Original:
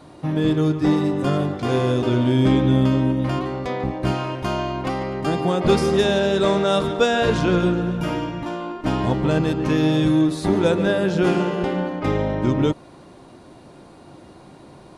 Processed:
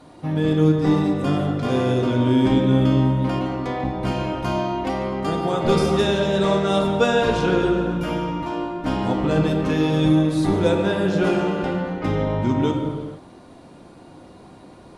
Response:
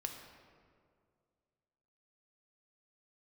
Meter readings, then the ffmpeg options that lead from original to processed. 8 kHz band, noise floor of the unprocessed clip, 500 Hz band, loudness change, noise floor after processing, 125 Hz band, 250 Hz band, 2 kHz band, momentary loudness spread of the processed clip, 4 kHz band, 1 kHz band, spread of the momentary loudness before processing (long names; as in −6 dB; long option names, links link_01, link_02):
−1.5 dB, −45 dBFS, −0.5 dB, 0.0 dB, −45 dBFS, 0.0 dB, 0.0 dB, −1.0 dB, 8 LU, −1.0 dB, +0.5 dB, 8 LU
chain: -filter_complex "[1:a]atrim=start_sample=2205,afade=type=out:start_time=0.38:duration=0.01,atrim=end_sample=17199,asetrate=30429,aresample=44100[link_01];[0:a][link_01]afir=irnorm=-1:irlink=0,volume=-1.5dB"